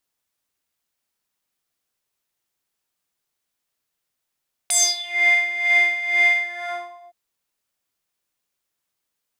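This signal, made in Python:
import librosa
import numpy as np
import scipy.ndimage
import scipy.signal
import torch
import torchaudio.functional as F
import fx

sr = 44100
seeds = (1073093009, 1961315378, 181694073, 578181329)

y = fx.sub_patch_tremolo(sr, seeds[0], note=77, wave='square', wave2='saw', interval_st=-12, detune_cents=15, level2_db=-9.0, sub_db=-15.0, noise_db=-22.5, kind='bandpass', cutoff_hz=830.0, q=6.7, env_oct=3.5, env_decay_s=0.45, env_sustain_pct=40, attack_ms=5.6, decay_s=0.25, sustain_db=-11.0, release_s=0.75, note_s=1.67, lfo_hz=2.1, tremolo_db=12.0)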